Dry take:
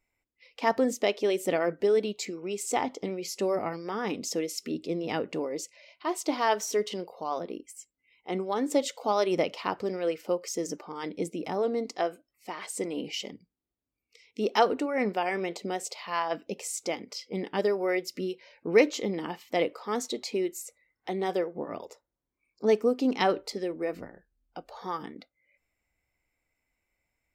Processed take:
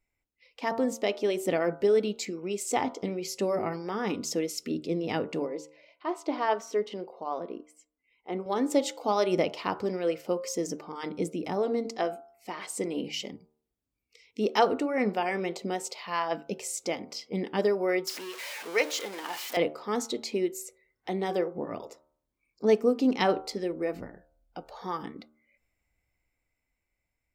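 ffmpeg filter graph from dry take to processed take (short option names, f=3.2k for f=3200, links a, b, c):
-filter_complex "[0:a]asettb=1/sr,asplit=3[a][b][c];[a]atrim=end=5.464[d];[b]atrim=start=5.46:end=8.46,asetpts=PTS-STARTPTS,afade=t=in:d=0.004:c=qsin,afade=t=out:st=2.996:d=0.004:c=qsin,lowpass=f=1.6k:p=1,equalizer=f=95:t=o:w=1.7:g=-13.5[e];[c]atrim=start=8.456[f];[d][e]acrossfade=d=0.004:c1=hsin:c2=qsin[g];[g][f]acrossfade=d=0.004:c1=qsin:c2=hsin,asettb=1/sr,asplit=3[h][i][j];[h]atrim=end=18.074[k];[i]atrim=start=18.07:end=19.57,asetpts=PTS-STARTPTS,afade=t=in:d=0.004:c=qsin,afade=t=out:st=1.496:d=0.004:c=qsin,aeval=exprs='val(0)+0.5*0.0224*sgn(val(0))':c=same,highpass=720[l];[j]atrim=start=19.566[m];[k][l]acrossfade=d=0.004:c1=hsin:c2=qsin[n];[n][m]acrossfade=d=0.004:c1=qsin:c2=hsin,lowshelf=f=190:g=6,bandreject=f=75.95:t=h:w=4,bandreject=f=151.9:t=h:w=4,bandreject=f=227.85:t=h:w=4,bandreject=f=303.8:t=h:w=4,bandreject=f=379.75:t=h:w=4,bandreject=f=455.7:t=h:w=4,bandreject=f=531.65:t=h:w=4,bandreject=f=607.6:t=h:w=4,bandreject=f=683.55:t=h:w=4,bandreject=f=759.5:t=h:w=4,bandreject=f=835.45:t=h:w=4,bandreject=f=911.4:t=h:w=4,bandreject=f=987.35:t=h:w=4,bandreject=f=1.0633k:t=h:w=4,bandreject=f=1.13925k:t=h:w=4,bandreject=f=1.2152k:t=h:w=4,bandreject=f=1.29115k:t=h:w=4,bandreject=f=1.3671k:t=h:w=4,bandreject=f=1.44305k:t=h:w=4,bandreject=f=1.519k:t=h:w=4,dynaudnorm=f=190:g=13:m=4dB,volume=-4dB"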